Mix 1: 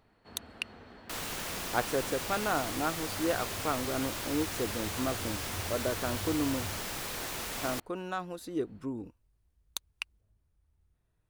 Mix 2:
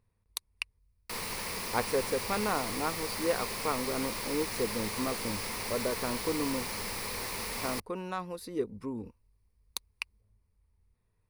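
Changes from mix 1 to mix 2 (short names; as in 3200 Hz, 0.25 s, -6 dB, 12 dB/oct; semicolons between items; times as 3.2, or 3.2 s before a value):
first sound: muted; master: add ripple EQ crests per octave 0.89, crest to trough 8 dB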